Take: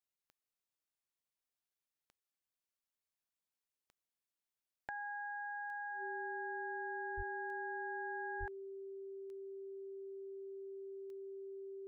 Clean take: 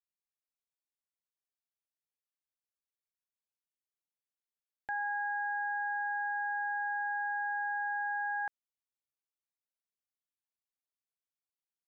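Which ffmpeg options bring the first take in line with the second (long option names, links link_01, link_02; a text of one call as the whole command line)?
ffmpeg -i in.wav -filter_complex "[0:a]adeclick=threshold=4,bandreject=frequency=390:width=30,asplit=3[link_01][link_02][link_03];[link_01]afade=type=out:start_time=7.16:duration=0.02[link_04];[link_02]highpass=frequency=140:width=0.5412,highpass=frequency=140:width=1.3066,afade=type=in:start_time=7.16:duration=0.02,afade=type=out:start_time=7.28:duration=0.02[link_05];[link_03]afade=type=in:start_time=7.28:duration=0.02[link_06];[link_04][link_05][link_06]amix=inputs=3:normalize=0,asplit=3[link_07][link_08][link_09];[link_07]afade=type=out:start_time=8.39:duration=0.02[link_10];[link_08]highpass=frequency=140:width=0.5412,highpass=frequency=140:width=1.3066,afade=type=in:start_time=8.39:duration=0.02,afade=type=out:start_time=8.51:duration=0.02[link_11];[link_09]afade=type=in:start_time=8.51:duration=0.02[link_12];[link_10][link_11][link_12]amix=inputs=3:normalize=0,asetnsamples=nb_out_samples=441:pad=0,asendcmd='4.89 volume volume 9dB',volume=0dB" out.wav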